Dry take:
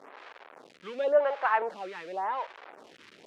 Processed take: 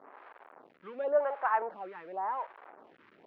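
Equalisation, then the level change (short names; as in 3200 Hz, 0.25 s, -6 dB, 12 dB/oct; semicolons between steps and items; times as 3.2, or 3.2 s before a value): LPF 1300 Hz 12 dB/oct; low shelf 260 Hz -6.5 dB; bell 500 Hz -4 dB 0.77 oct; 0.0 dB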